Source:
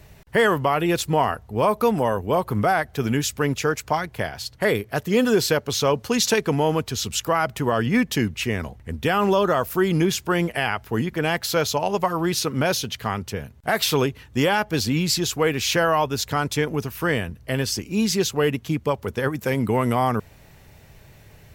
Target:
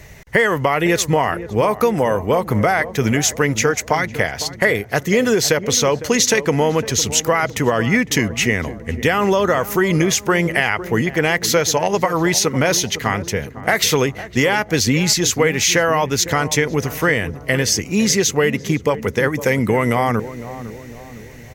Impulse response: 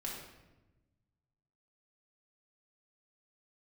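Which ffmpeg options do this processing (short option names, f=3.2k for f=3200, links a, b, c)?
-filter_complex "[0:a]equalizer=f=500:t=o:w=0.33:g=4,equalizer=f=2k:t=o:w=0.33:g=11,equalizer=f=6.3k:t=o:w=0.33:g=9,acompressor=threshold=-18dB:ratio=6,asplit=2[a][b];[b]adelay=506,lowpass=f=840:p=1,volume=-12.5dB,asplit=2[c][d];[d]adelay=506,lowpass=f=840:p=1,volume=0.55,asplit=2[e][f];[f]adelay=506,lowpass=f=840:p=1,volume=0.55,asplit=2[g][h];[h]adelay=506,lowpass=f=840:p=1,volume=0.55,asplit=2[i][j];[j]adelay=506,lowpass=f=840:p=1,volume=0.55,asplit=2[k][l];[l]adelay=506,lowpass=f=840:p=1,volume=0.55[m];[c][e][g][i][k][m]amix=inputs=6:normalize=0[n];[a][n]amix=inputs=2:normalize=0,volume=6dB"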